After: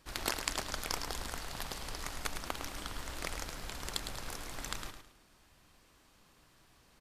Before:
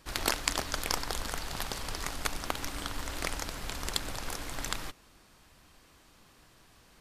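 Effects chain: feedback echo 0.107 s, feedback 31%, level -8 dB; gain -5.5 dB

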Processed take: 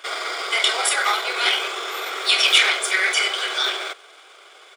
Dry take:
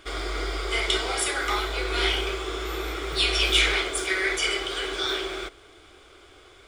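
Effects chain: HPF 530 Hz 24 dB/oct; tempo 1.4×; gain +7 dB

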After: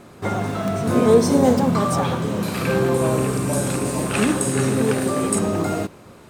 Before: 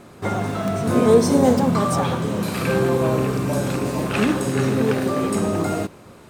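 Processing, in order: 2.94–5.39 bell 9000 Hz +12 dB 0.63 oct

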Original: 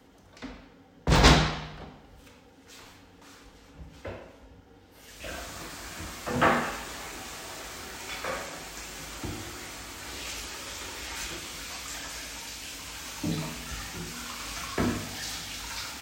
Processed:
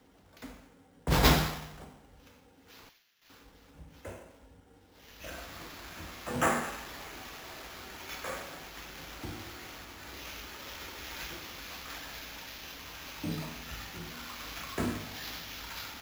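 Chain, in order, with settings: 2.89–3.3 Bessel high-pass 2700 Hz, order 8; 9.84–10.6 high shelf 4800 Hz -4.5 dB; sample-and-hold 5×; gain -5 dB

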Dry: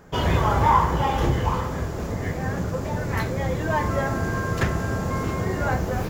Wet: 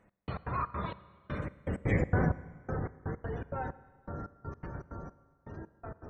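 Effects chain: Doppler pass-by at 2.03, 55 m/s, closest 11 m; on a send: dark delay 0.152 s, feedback 54%, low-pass 2300 Hz, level -9 dB; on the sum: spectral gate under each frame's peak -30 dB strong; step gate "x..x.xx.xx....x" 162 bpm -60 dB; in parallel at -3 dB: compressor, threshold -39 dBFS, peak gain reduction 14.5 dB; on the sum: spectral gain 0.87–2.08, 600–1500 Hz -7 dB; Schroeder reverb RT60 1.7 s, combs from 32 ms, DRR 16.5 dB

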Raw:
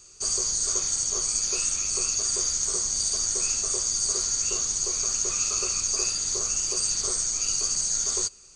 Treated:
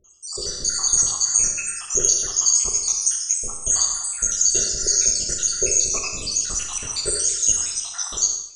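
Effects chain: random spectral dropouts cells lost 83%; Schroeder reverb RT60 1.1 s, combs from 28 ms, DRR 2.5 dB; AGC gain up to 11 dB

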